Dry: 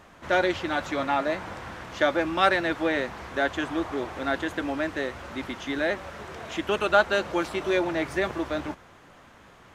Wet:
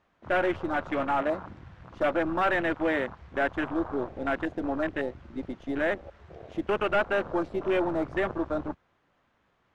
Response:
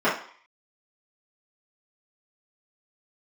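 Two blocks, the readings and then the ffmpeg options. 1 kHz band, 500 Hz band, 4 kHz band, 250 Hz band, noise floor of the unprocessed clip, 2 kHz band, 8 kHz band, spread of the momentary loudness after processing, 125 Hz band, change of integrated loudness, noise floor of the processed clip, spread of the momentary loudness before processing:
−3.0 dB, −1.5 dB, −9.5 dB, −1.0 dB, −52 dBFS, −3.5 dB, below −15 dB, 12 LU, −1.0 dB, −2.5 dB, −70 dBFS, 13 LU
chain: -af "volume=20dB,asoftclip=hard,volume=-20dB,lowpass=5000,aeval=exprs='0.112*(cos(1*acos(clip(val(0)/0.112,-1,1)))-cos(1*PI/2))+0.000794*(cos(5*acos(clip(val(0)/0.112,-1,1)))-cos(5*PI/2))+0.00316*(cos(7*acos(clip(val(0)/0.112,-1,1)))-cos(7*PI/2))+0.00631*(cos(8*acos(clip(val(0)/0.112,-1,1)))-cos(8*PI/2))':channel_layout=same,afwtdn=0.0282"

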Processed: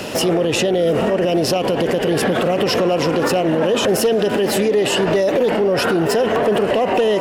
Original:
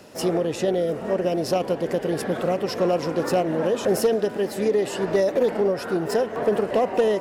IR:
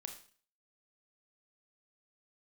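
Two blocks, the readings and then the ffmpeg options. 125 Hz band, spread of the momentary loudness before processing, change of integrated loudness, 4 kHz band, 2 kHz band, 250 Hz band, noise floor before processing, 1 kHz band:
+7.5 dB, 4 LU, +6.5 dB, +13.0 dB, +10.5 dB, +7.0 dB, −34 dBFS, +7.0 dB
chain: -af "equalizer=frequency=2900:width=2.6:gain=7.5,acompressor=threshold=-24dB:ratio=6,alimiter=level_in=27.5dB:limit=-1dB:release=50:level=0:latency=1,volume=-8.5dB"

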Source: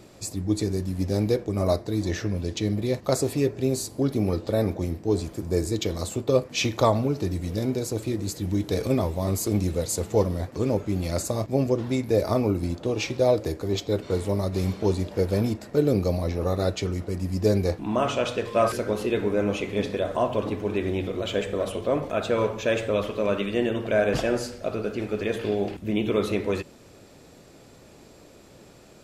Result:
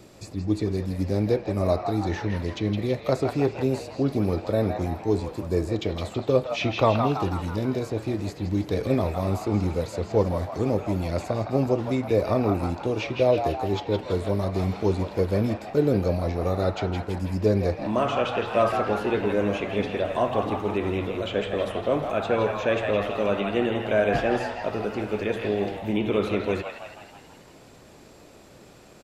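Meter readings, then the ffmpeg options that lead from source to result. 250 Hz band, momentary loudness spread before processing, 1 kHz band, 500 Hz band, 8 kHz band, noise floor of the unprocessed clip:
0.0 dB, 5 LU, +3.5 dB, +0.5 dB, below −10 dB, −50 dBFS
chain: -filter_complex "[0:a]acrossover=split=510|3700[link_01][link_02][link_03];[link_02]asplit=9[link_04][link_05][link_06][link_07][link_08][link_09][link_10][link_11][link_12];[link_05]adelay=163,afreqshift=76,volume=-3.5dB[link_13];[link_06]adelay=326,afreqshift=152,volume=-8.5dB[link_14];[link_07]adelay=489,afreqshift=228,volume=-13.6dB[link_15];[link_08]adelay=652,afreqshift=304,volume=-18.6dB[link_16];[link_09]adelay=815,afreqshift=380,volume=-23.6dB[link_17];[link_10]adelay=978,afreqshift=456,volume=-28.7dB[link_18];[link_11]adelay=1141,afreqshift=532,volume=-33.7dB[link_19];[link_12]adelay=1304,afreqshift=608,volume=-38.8dB[link_20];[link_04][link_13][link_14][link_15][link_16][link_17][link_18][link_19][link_20]amix=inputs=9:normalize=0[link_21];[link_03]acompressor=threshold=-52dB:ratio=6[link_22];[link_01][link_21][link_22]amix=inputs=3:normalize=0"

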